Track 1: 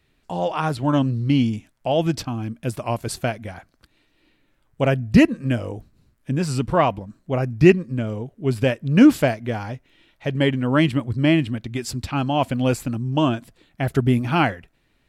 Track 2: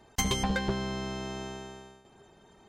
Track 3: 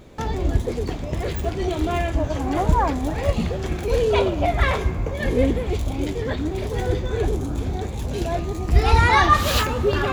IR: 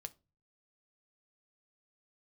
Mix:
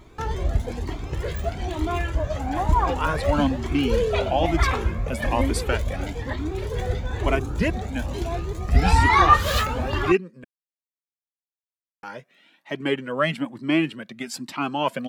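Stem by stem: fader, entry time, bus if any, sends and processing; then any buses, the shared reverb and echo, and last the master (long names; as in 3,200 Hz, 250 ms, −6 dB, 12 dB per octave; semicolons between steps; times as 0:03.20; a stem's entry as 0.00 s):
−4.5 dB, 2.45 s, muted 0:10.44–0:12.03, no send, Butterworth high-pass 170 Hz 36 dB per octave; automatic gain control gain up to 11.5 dB
−3.0 dB, 0.00 s, no send, downward compressor, threshold −36 dBFS, peak gain reduction 11.5 dB; tremolo along a rectified sine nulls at 2.7 Hz
0.0 dB, 0.00 s, no send, no processing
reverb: not used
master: parametric band 1,400 Hz +3.5 dB 1.7 octaves; flanger whose copies keep moving one way rising 1.1 Hz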